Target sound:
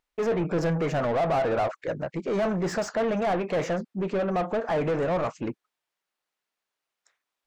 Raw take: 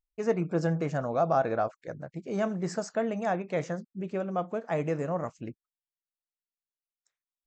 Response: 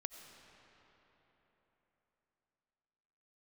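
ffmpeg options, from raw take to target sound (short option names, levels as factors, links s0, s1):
-filter_complex "[0:a]asoftclip=type=tanh:threshold=0.0944,asplit=2[s0][s1];[s1]highpass=f=720:p=1,volume=15.8,asoftclip=type=tanh:threshold=0.0944[s2];[s0][s2]amix=inputs=2:normalize=0,lowpass=f=1600:p=1,volume=0.501,volume=1.26"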